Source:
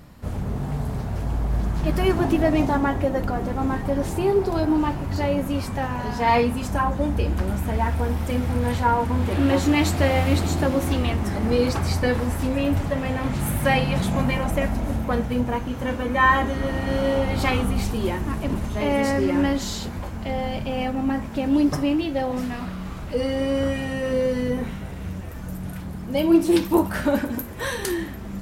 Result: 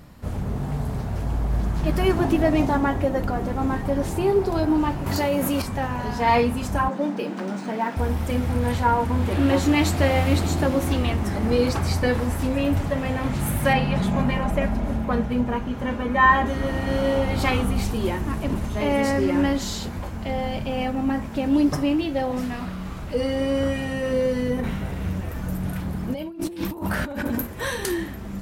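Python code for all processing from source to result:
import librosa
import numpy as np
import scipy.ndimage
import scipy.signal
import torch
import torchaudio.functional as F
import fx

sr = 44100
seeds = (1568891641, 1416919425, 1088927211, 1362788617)

y = fx.chain(x, sr, fx.highpass(hz=200.0, slope=6),
    fx.high_shelf(hz=8900.0, db=11.5),
    fx.env_flatten(amount_pct=70), at=(5.06, 5.62))
y = fx.chain(y, sr, fx.brickwall_bandpass(low_hz=160.0, high_hz=11000.0),
    fx.resample_linear(factor=3), at=(6.88, 7.97))
y = fx.chain(y, sr, fx.high_shelf(hz=5300.0, db=-10.0),
    fx.comb(ms=4.9, depth=0.33), at=(13.73, 16.46))
y = fx.chain(y, sr, fx.peak_eq(hz=7800.0, db=-3.0, octaves=1.6),
    fx.over_compress(threshold_db=-28.0, ratio=-1.0), at=(24.59, 27.47))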